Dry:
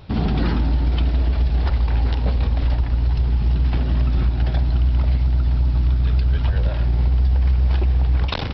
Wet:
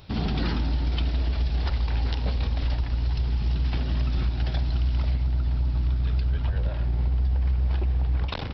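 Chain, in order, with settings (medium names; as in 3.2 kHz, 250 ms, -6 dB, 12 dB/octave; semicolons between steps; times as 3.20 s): treble shelf 3 kHz +11 dB, from 5.11 s +2.5 dB, from 6.30 s -2.5 dB; trim -6.5 dB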